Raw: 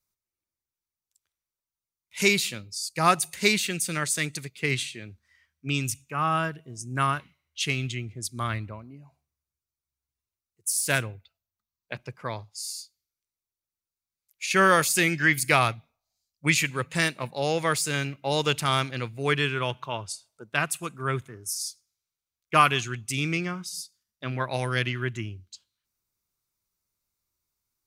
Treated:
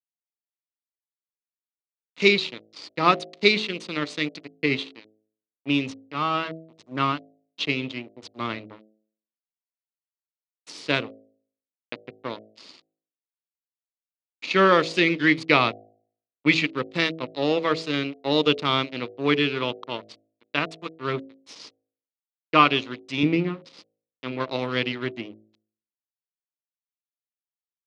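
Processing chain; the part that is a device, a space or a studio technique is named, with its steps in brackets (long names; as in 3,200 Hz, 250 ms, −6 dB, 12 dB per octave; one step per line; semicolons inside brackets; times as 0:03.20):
blown loudspeaker (dead-zone distortion −34 dBFS; loudspeaker in its box 170–4,200 Hz, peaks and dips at 290 Hz +9 dB, 460 Hz +4 dB, 760 Hz −5 dB, 1,600 Hz −8 dB, 4,000 Hz +4 dB)
hum removal 53.89 Hz, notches 14
0:23.23–0:23.65: spectral tilt −3 dB per octave
level +4.5 dB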